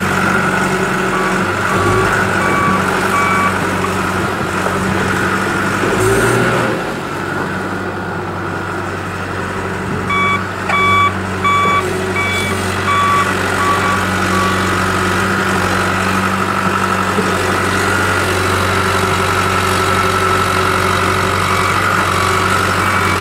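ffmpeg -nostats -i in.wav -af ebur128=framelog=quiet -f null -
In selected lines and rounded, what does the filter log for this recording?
Integrated loudness:
  I:         -14.2 LUFS
  Threshold: -24.2 LUFS
Loudness range:
  LRA:         3.7 LU
  Threshold: -34.3 LUFS
  LRA low:   -16.7 LUFS
  LRA high:  -13.0 LUFS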